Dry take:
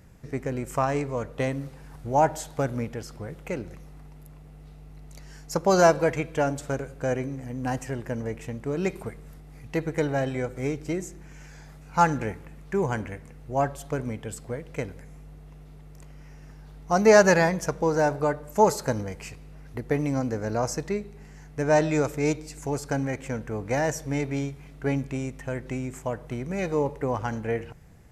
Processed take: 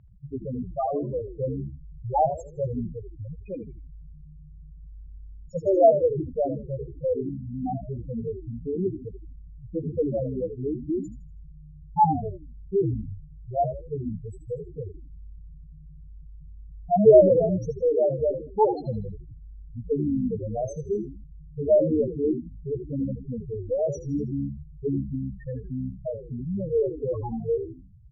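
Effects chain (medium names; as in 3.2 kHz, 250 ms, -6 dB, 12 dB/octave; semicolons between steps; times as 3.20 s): loudest bins only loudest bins 2; frequency-shifting echo 80 ms, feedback 37%, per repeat -68 Hz, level -9.5 dB; level-controlled noise filter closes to 2.4 kHz, open at -22.5 dBFS; trim +4.5 dB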